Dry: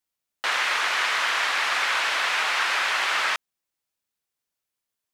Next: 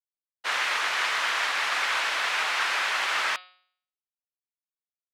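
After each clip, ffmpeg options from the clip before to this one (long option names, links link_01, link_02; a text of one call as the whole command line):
ffmpeg -i in.wav -af "agate=range=-33dB:threshold=-22dB:ratio=3:detection=peak,bandreject=frequency=182.5:width_type=h:width=4,bandreject=frequency=365:width_type=h:width=4,bandreject=frequency=547.5:width_type=h:width=4,bandreject=frequency=730:width_type=h:width=4,bandreject=frequency=912.5:width_type=h:width=4,bandreject=frequency=1095:width_type=h:width=4,bandreject=frequency=1277.5:width_type=h:width=4,bandreject=frequency=1460:width_type=h:width=4,bandreject=frequency=1642.5:width_type=h:width=4,bandreject=frequency=1825:width_type=h:width=4,bandreject=frequency=2007.5:width_type=h:width=4,bandreject=frequency=2190:width_type=h:width=4,bandreject=frequency=2372.5:width_type=h:width=4,bandreject=frequency=2555:width_type=h:width=4,bandreject=frequency=2737.5:width_type=h:width=4,bandreject=frequency=2920:width_type=h:width=4,bandreject=frequency=3102.5:width_type=h:width=4,bandreject=frequency=3285:width_type=h:width=4,bandreject=frequency=3467.5:width_type=h:width=4,bandreject=frequency=3650:width_type=h:width=4,bandreject=frequency=3832.5:width_type=h:width=4,bandreject=frequency=4015:width_type=h:width=4,bandreject=frequency=4197.5:width_type=h:width=4,bandreject=frequency=4380:width_type=h:width=4,bandreject=frequency=4562.5:width_type=h:width=4,bandreject=frequency=4745:width_type=h:width=4,bandreject=frequency=4927.5:width_type=h:width=4,acontrast=60,volume=-7.5dB" out.wav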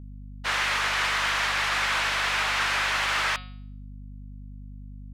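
ffmpeg -i in.wav -af "aeval=exprs='val(0)+0.00794*(sin(2*PI*50*n/s)+sin(2*PI*2*50*n/s)/2+sin(2*PI*3*50*n/s)/3+sin(2*PI*4*50*n/s)/4+sin(2*PI*5*50*n/s)/5)':channel_layout=same,asoftclip=type=tanh:threshold=-20.5dB,volume=2.5dB" out.wav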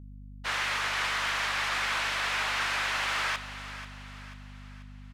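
ffmpeg -i in.wav -af "aecho=1:1:488|976|1464|1952|2440:0.224|0.105|0.0495|0.0232|0.0109,volume=-4.5dB" out.wav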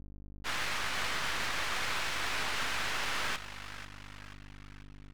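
ffmpeg -i in.wav -af "aeval=exprs='max(val(0),0)':channel_layout=same" out.wav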